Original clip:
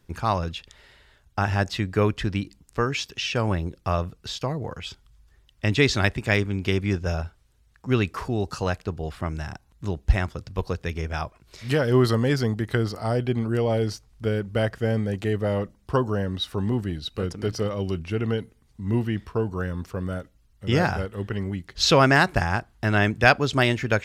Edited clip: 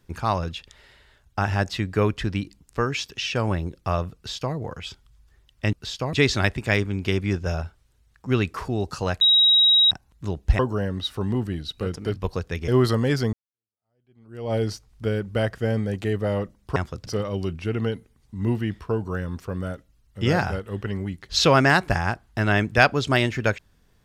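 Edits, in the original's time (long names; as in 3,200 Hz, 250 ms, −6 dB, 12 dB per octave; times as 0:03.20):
0:04.15–0:04.55: duplicate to 0:05.73
0:08.81–0:09.51: beep over 3,820 Hz −13 dBFS
0:10.19–0:10.50: swap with 0:15.96–0:17.53
0:11.02–0:11.88: remove
0:12.53–0:13.74: fade in exponential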